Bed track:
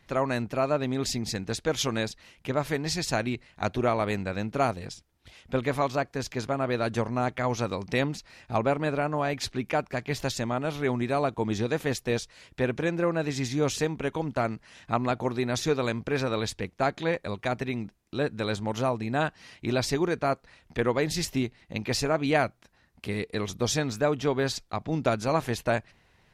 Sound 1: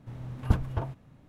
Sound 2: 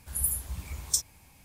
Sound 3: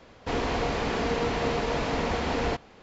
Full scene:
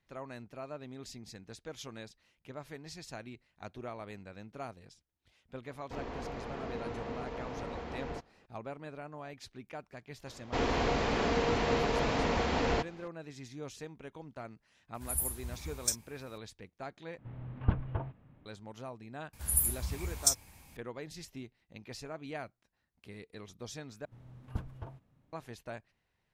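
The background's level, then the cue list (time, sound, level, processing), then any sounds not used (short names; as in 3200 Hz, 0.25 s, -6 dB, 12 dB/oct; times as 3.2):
bed track -17.5 dB
5.64 add 3 -12.5 dB + high shelf 2600 Hz -10 dB
10.26 add 3 -2.5 dB
14.94 add 2 -5 dB
17.18 replace with 1 -4.5 dB + LPF 3000 Hz 24 dB/oct
19.33 add 2
24.05 replace with 1 -13.5 dB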